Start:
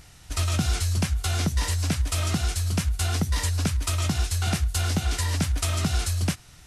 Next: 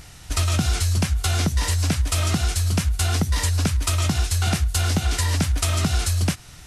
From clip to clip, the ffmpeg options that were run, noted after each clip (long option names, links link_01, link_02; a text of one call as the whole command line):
ffmpeg -i in.wav -af "acompressor=threshold=-26dB:ratio=2,volume=6.5dB" out.wav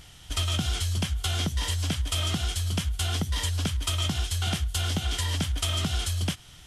ffmpeg -i in.wav -af "equalizer=frequency=3200:width_type=o:width=0.2:gain=14.5,volume=-7dB" out.wav